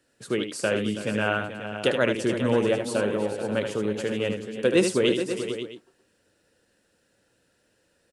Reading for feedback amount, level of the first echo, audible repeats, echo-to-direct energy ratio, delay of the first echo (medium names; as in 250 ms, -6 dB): no regular repeats, -7.0 dB, 5, -4.0 dB, 76 ms